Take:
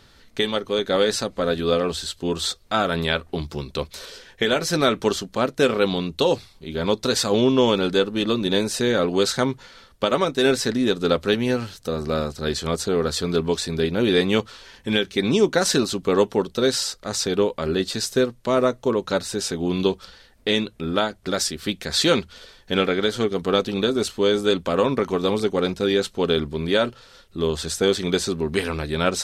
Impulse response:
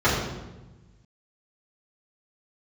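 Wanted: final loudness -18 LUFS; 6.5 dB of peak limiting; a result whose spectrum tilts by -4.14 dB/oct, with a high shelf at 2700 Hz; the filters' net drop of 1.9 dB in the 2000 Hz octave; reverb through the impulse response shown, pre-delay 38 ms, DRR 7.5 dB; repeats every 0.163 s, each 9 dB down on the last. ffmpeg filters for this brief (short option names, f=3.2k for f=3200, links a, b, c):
-filter_complex "[0:a]equalizer=f=2k:t=o:g=-5,highshelf=f=2.7k:g=5.5,alimiter=limit=-11.5dB:level=0:latency=1,aecho=1:1:163|326|489|652:0.355|0.124|0.0435|0.0152,asplit=2[a][b];[1:a]atrim=start_sample=2205,adelay=38[c];[b][c]afir=irnorm=-1:irlink=0,volume=-27dB[d];[a][d]amix=inputs=2:normalize=0,volume=4dB"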